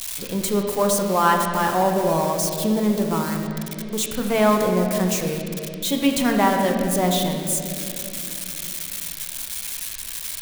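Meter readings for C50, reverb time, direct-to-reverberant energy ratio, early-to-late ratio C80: 3.5 dB, 2.8 s, 2.0 dB, 4.5 dB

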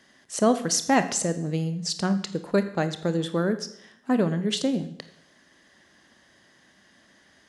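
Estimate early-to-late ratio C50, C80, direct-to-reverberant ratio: 12.5 dB, 15.0 dB, 10.0 dB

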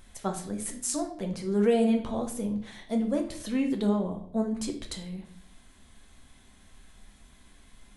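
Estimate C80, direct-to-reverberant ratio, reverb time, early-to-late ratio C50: 14.0 dB, 3.0 dB, 0.60 s, 9.5 dB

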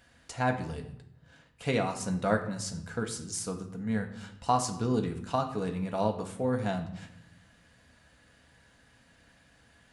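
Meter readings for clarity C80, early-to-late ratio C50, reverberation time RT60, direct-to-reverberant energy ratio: 13.0 dB, 10.0 dB, 0.75 s, 3.5 dB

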